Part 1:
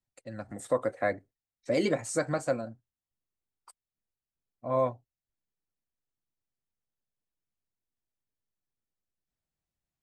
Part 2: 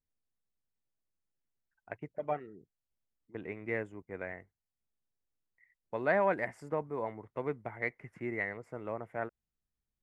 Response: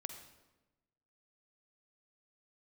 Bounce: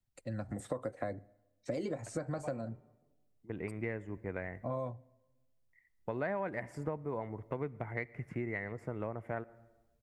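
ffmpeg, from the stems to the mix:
-filter_complex "[0:a]acrossover=split=350|1300|4000[a][b][c][d];[a]acompressor=threshold=-37dB:ratio=4[e];[b]acompressor=threshold=-28dB:ratio=4[f];[c]acompressor=threshold=-49dB:ratio=4[g];[d]acompressor=threshold=-51dB:ratio=4[h];[e][f][g][h]amix=inputs=4:normalize=0,volume=-1.5dB,asplit=3[i][j][k];[j]volume=-20dB[l];[1:a]adelay=150,volume=1.5dB,asplit=2[m][n];[n]volume=-12dB[o];[k]apad=whole_len=448774[p];[m][p]sidechaincompress=threshold=-51dB:ratio=8:attack=32:release=852[q];[2:a]atrim=start_sample=2205[r];[l][o]amix=inputs=2:normalize=0[s];[s][r]afir=irnorm=-1:irlink=0[t];[i][q][t]amix=inputs=3:normalize=0,lowshelf=f=180:g=11.5,acompressor=threshold=-34dB:ratio=5"

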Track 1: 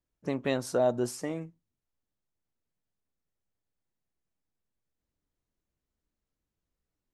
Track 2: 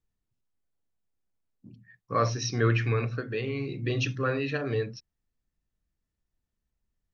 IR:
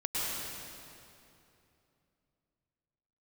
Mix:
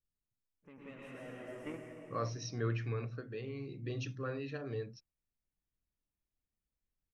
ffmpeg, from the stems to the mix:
-filter_complex "[0:a]asoftclip=type=tanh:threshold=-29.5dB,highshelf=f=3.4k:t=q:w=3:g=-9.5,adelay=400,volume=-5dB,asplit=2[a][b];[b]volume=-15.5dB[c];[1:a]equalizer=f=2.3k:t=o:w=1.9:g=-5,volume=-10.5dB,asplit=2[d][e];[e]apad=whole_len=332221[f];[a][f]sidechaingate=range=-33dB:threshold=-58dB:ratio=16:detection=peak[g];[2:a]atrim=start_sample=2205[h];[c][h]afir=irnorm=-1:irlink=0[i];[g][d][i]amix=inputs=3:normalize=0"

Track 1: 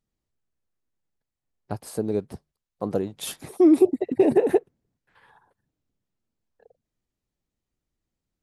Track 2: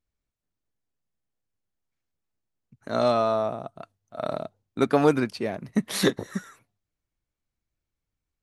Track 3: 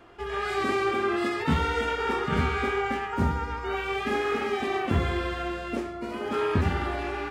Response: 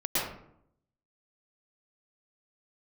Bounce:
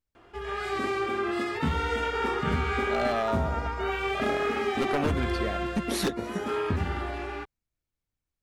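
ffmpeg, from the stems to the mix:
-filter_complex "[1:a]aeval=exprs='0.168*(abs(mod(val(0)/0.168+3,4)-2)-1)':c=same,volume=-3.5dB[a];[2:a]equalizer=f=62:t=o:w=0.77:g=2.5,dynaudnorm=f=490:g=7:m=3.5dB,adelay=150,volume=-3dB[b];[a][b]amix=inputs=2:normalize=0,acompressor=threshold=-22dB:ratio=6"

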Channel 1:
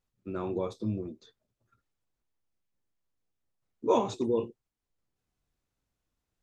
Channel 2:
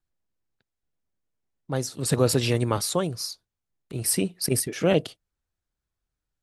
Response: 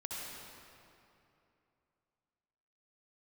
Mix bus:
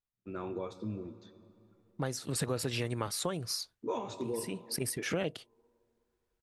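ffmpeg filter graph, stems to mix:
-filter_complex "[0:a]agate=range=-9dB:threshold=-59dB:ratio=16:detection=peak,volume=-6.5dB,asplit=3[a][b][c];[b]volume=-13.5dB[d];[1:a]adelay=300,volume=-0.5dB[e];[c]apad=whole_len=296436[f];[e][f]sidechaincompress=threshold=-45dB:ratio=8:attack=16:release=608[g];[2:a]atrim=start_sample=2205[h];[d][h]afir=irnorm=-1:irlink=0[i];[a][g][i]amix=inputs=3:normalize=0,equalizer=f=1.8k:t=o:w=1.6:g=5,acompressor=threshold=-32dB:ratio=4"

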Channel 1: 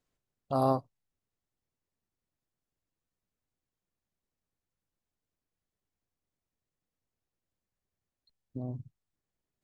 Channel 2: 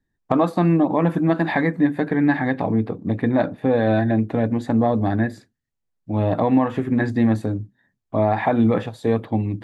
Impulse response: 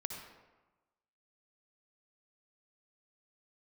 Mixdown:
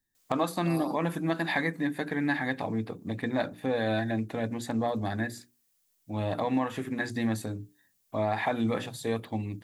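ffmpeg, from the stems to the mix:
-filter_complex "[0:a]highpass=160,alimiter=limit=-24dB:level=0:latency=1,adelay=150,volume=2.5dB[a];[1:a]volume=-11dB,asplit=2[b][c];[c]apad=whole_len=431632[d];[a][d]sidechaincompress=threshold=-36dB:ratio=4:attack=5.4:release=318[e];[e][b]amix=inputs=2:normalize=0,bandreject=f=60:t=h:w=6,bandreject=f=120:t=h:w=6,bandreject=f=180:t=h:w=6,bandreject=f=240:t=h:w=6,bandreject=f=300:t=h:w=6,bandreject=f=360:t=h:w=6,bandreject=f=420:t=h:w=6,crystalizer=i=7:c=0"

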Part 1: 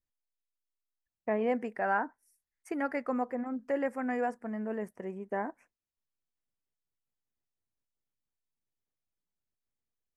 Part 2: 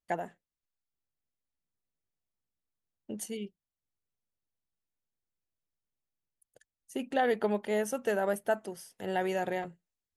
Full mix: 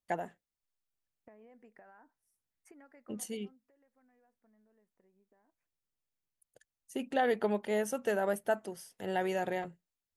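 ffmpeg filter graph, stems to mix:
-filter_complex "[0:a]alimiter=level_in=5dB:limit=-24dB:level=0:latency=1:release=365,volume=-5dB,acompressor=threshold=-45dB:ratio=16,volume=-9dB,afade=t=out:st=3.18:d=0.51:silence=0.223872[a];[1:a]volume=-1.5dB[b];[a][b]amix=inputs=2:normalize=0"

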